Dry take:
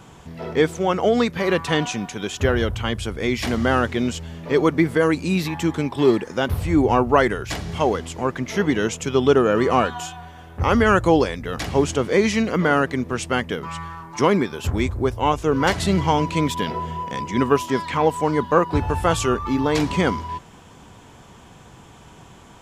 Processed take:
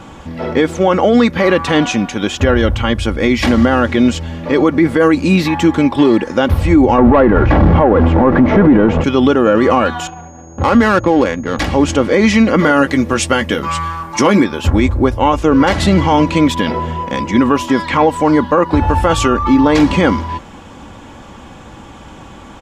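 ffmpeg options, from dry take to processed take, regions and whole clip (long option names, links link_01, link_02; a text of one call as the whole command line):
ffmpeg -i in.wav -filter_complex "[0:a]asettb=1/sr,asplit=3[link_01][link_02][link_03];[link_01]atrim=end=6.984[link_04];[link_02]atrim=start=6.98:end=9.04,asetpts=PTS-STARTPTS,afade=type=in:duration=0.004:curve=qsin,afade=type=out:start_time=2.056:duration=0.004:curve=qsin,aeval=exprs='val(0)+0.5*0.0562*sgn(val(0))':channel_layout=same,lowpass=1100,acontrast=90[link_05];[link_03]atrim=start=9.036[link_06];[link_04][link_05]acrossfade=duration=0.004:curve1=hsin:curve2=qsin[link_07];[link_07][link_06]acrossfade=duration=0.004:curve1=qsin:curve2=hsin,asettb=1/sr,asplit=3[link_08][link_09][link_10];[link_08]atrim=end=10.074[link_11];[link_09]atrim=start=10.07:end=11.59,asetpts=PTS-STARTPTS,afade=type=in:duration=0.004:curve=qsin,afade=type=out:start_time=1.516:duration=0.004:curve=qsin,highpass=110,adynamicsmooth=sensitivity=2:basefreq=540,aeval=exprs='val(0)+0.00501*sin(2*PI*6600*n/s)':channel_layout=same[link_12];[link_10]atrim=start=11.586[link_13];[link_11][link_12]acrossfade=duration=0.004:curve1=hsin:curve2=qsin[link_14];[link_14][link_13]acrossfade=duration=0.004:curve1=qsin:curve2=hsin,asettb=1/sr,asplit=3[link_15][link_16][link_17];[link_15]atrim=end=12.584[link_18];[link_16]atrim=start=12.58:end=14.44,asetpts=PTS-STARTPTS,afade=type=in:duration=0.004:curve=qsin,afade=type=out:start_time=1.856:duration=0.004:curve=qsin,highshelf=frequency=4600:gain=11,asplit=2[link_19][link_20];[link_20]adelay=14,volume=-9dB[link_21];[link_19][link_21]amix=inputs=2:normalize=0,atrim=end_sample=82026[link_22];[link_17]atrim=start=14.436[link_23];[link_18][link_22]acrossfade=duration=0.004:curve1=hsin:curve2=qsin[link_24];[link_24][link_23]acrossfade=duration=0.004:curve1=qsin:curve2=hsin,lowpass=frequency=3300:poles=1,aecho=1:1:3.6:0.46,alimiter=level_in=12dB:limit=-1dB:release=50:level=0:latency=1,volume=-1dB" out.wav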